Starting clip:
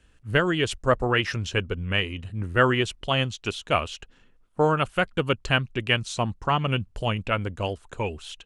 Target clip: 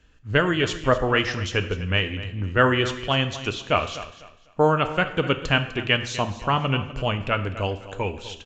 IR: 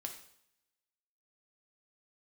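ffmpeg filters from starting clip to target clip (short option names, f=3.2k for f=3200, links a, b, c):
-filter_complex "[0:a]asplit=2[a][b];[1:a]atrim=start_sample=2205,asetrate=38808,aresample=44100[c];[b][c]afir=irnorm=-1:irlink=0,volume=3dB[d];[a][d]amix=inputs=2:normalize=0,aresample=16000,aresample=44100,asplit=2[e][f];[f]aecho=0:1:250|500|750:0.178|0.0462|0.012[g];[e][g]amix=inputs=2:normalize=0,volume=-4.5dB"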